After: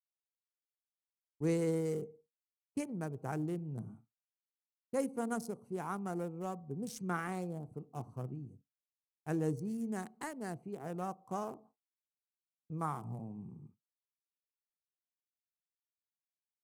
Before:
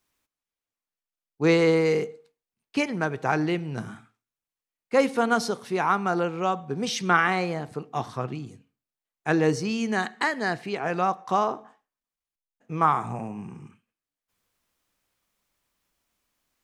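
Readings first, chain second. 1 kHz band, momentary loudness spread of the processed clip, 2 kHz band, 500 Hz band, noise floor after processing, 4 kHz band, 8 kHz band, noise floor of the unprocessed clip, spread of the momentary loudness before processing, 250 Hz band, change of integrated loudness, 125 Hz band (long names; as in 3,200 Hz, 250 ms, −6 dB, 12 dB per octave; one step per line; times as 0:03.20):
−17.5 dB, 12 LU, −21.5 dB, −14.0 dB, below −85 dBFS, −23.5 dB, −11.0 dB, below −85 dBFS, 13 LU, −10.5 dB, −14.0 dB, −8.5 dB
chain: adaptive Wiener filter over 25 samples
downward expander −43 dBFS
drawn EQ curve 110 Hz 0 dB, 3,800 Hz −17 dB, 9,400 Hz +10 dB
level −6.5 dB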